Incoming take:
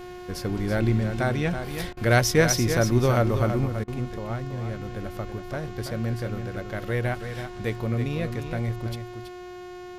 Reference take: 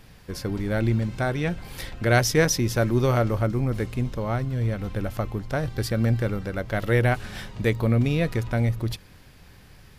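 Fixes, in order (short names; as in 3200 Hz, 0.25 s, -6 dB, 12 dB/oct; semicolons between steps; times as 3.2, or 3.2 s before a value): de-hum 360.2 Hz, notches 21; interpolate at 1.93/3.84, 38 ms; inverse comb 0.328 s -8.5 dB; gain correction +6 dB, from 3.66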